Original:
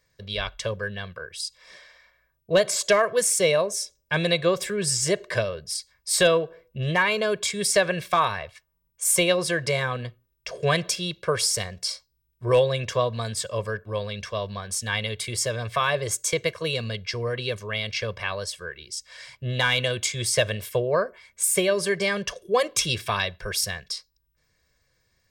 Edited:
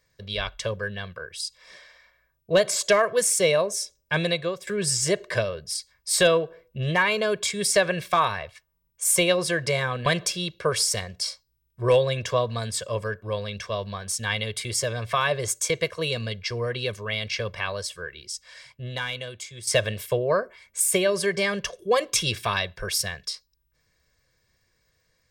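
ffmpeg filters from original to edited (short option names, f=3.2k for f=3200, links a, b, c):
-filter_complex "[0:a]asplit=4[a][b][c][d];[a]atrim=end=4.67,asetpts=PTS-STARTPTS,afade=t=out:st=4.17:d=0.5:silence=0.158489[e];[b]atrim=start=4.67:end=10.062,asetpts=PTS-STARTPTS,afade=t=in:d=0.004:c=hsin:silence=0.158489[f];[c]atrim=start=10.688:end=20.3,asetpts=PTS-STARTPTS,afade=t=out:st=8.212:d=1.4:c=qua:silence=0.237137[g];[d]atrim=start=20.3,asetpts=PTS-STARTPTS,afade=t=in:d=0.004:c=hsin:silence=0.237137[h];[e][f]concat=n=2:v=0:a=1[i];[g][h]concat=n=2:v=0:a=1[j];[i][j]acrossfade=d=0.004:c1=hsin:c2=hsin"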